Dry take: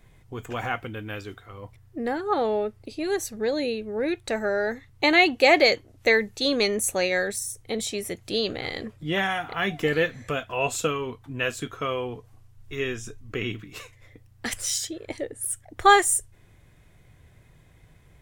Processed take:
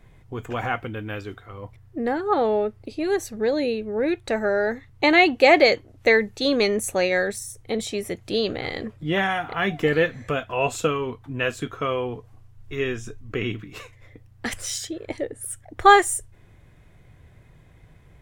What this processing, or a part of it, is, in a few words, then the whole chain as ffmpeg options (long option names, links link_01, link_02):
behind a face mask: -af "highshelf=frequency=3500:gain=-8,volume=3.5dB"